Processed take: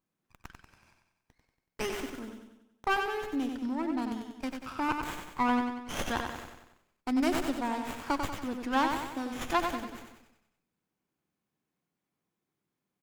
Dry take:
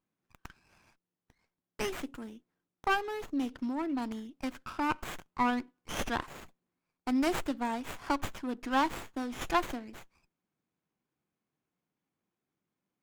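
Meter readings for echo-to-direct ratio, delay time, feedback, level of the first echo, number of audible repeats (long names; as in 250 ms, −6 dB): −4.0 dB, 94 ms, 51%, −5.5 dB, 6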